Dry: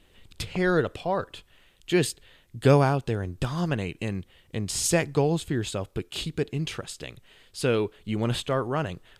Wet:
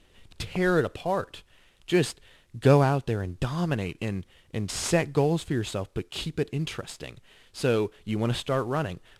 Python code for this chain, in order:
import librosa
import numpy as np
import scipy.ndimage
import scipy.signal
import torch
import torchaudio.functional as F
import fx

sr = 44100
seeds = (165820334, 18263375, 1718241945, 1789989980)

y = fx.cvsd(x, sr, bps=64000)
y = fx.high_shelf(y, sr, hz=6400.0, db=-5.0)